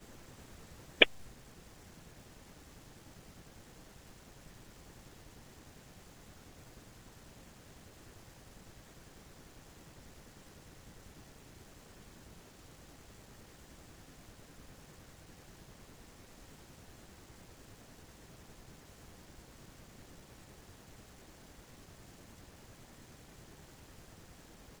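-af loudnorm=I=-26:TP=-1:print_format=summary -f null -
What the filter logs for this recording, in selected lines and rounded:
Input Integrated:    -31.3 LUFS
Input True Peak:      -4.1 dBTP
Input LRA:            20.4 LU
Input Threshold:     -55.0 LUFS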